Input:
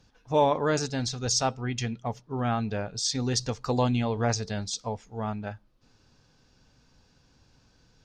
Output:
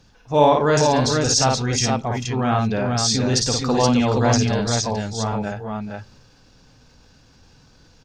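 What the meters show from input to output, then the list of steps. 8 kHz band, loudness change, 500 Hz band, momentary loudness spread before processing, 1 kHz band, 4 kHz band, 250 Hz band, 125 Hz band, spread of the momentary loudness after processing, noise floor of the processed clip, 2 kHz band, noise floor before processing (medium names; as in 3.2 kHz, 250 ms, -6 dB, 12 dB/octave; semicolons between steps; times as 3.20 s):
+9.5 dB, +9.0 dB, +9.0 dB, 10 LU, +9.5 dB, +9.5 dB, +9.5 dB, +9.0 dB, 10 LU, -53 dBFS, +9.5 dB, -64 dBFS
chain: multi-tap echo 54/439/472 ms -4.5/-13/-4 dB; transient shaper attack -3 dB, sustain +3 dB; trim +7 dB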